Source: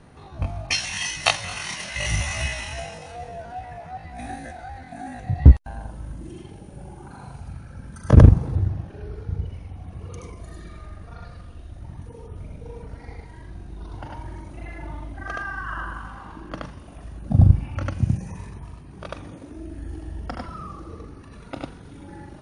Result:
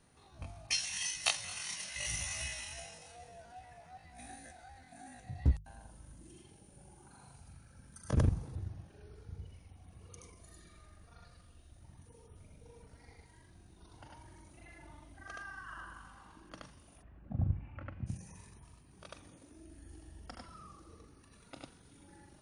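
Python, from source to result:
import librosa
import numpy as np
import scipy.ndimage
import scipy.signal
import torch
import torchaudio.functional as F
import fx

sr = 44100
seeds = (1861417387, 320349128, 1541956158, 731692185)

y = fx.lowpass(x, sr, hz=2300.0, slope=24, at=(17.01, 18.06), fade=0.02)
y = scipy.signal.lfilter([1.0, -0.8], [1.0], y)
y = fx.hum_notches(y, sr, base_hz=50, count=3)
y = F.gain(torch.from_numpy(y), -4.0).numpy()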